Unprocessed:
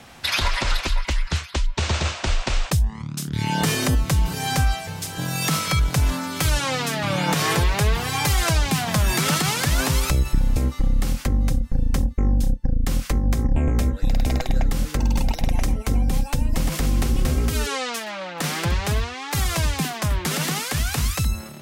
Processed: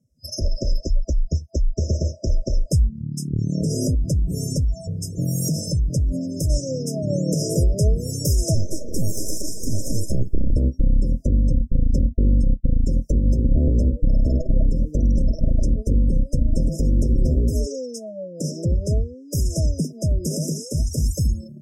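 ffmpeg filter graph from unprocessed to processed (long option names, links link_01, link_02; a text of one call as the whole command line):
ffmpeg -i in.wav -filter_complex "[0:a]asettb=1/sr,asplit=3[link_01][link_02][link_03];[link_01]atrim=end=3.334[link_04];[link_02]atrim=start=3.33:end=6.5,asetpts=PTS-STARTPTS,afade=type=in:duration=0.004:curve=qsin,afade=type=out:start_time=3.166:duration=0.004:curve=qsin,lowshelf=frequency=140:gain=6,acompressor=threshold=-18dB:ratio=12:attack=3.2:release=140:knee=1:detection=peak[link_05];[link_03]atrim=start=6.496[link_06];[link_04][link_05]acrossfade=duration=0.004:curve1=hsin:curve2=qsin[link_07];[link_07][link_06]acrossfade=duration=0.004:curve1=qsin:curve2=hsin,asettb=1/sr,asplit=3[link_08][link_09][link_10];[link_08]atrim=end=8.554[link_11];[link_09]atrim=start=8.55:end=10.51,asetpts=PTS-STARTPTS,afade=type=in:duration=0.004:curve=qsin,afade=type=out:start_time=1.956:duration=0.004:curve=qsin,aeval=exprs='abs(val(0))':channel_layout=same,acrossover=split=280|3000[link_12][link_13][link_14];[link_13]acompressor=threshold=-30dB:ratio=2.5:attack=3.2:release=140:knee=2.83:detection=peak[link_15];[link_12][link_15][link_14]amix=inputs=3:normalize=0[link_16];[link_10]atrim=start=10.506[link_17];[link_11][link_16]acrossfade=duration=0.004:curve1=hsin:curve2=qsin[link_18];[link_18][link_17]acrossfade=duration=0.004:curve1=qsin:curve2=hsin,afftdn=noise_reduction=32:noise_floor=-32,afftfilt=real='re*(1-between(b*sr/4096,660,5000))':imag='im*(1-between(b*sr/4096,660,5000))':win_size=4096:overlap=0.75,volume=2.5dB" out.wav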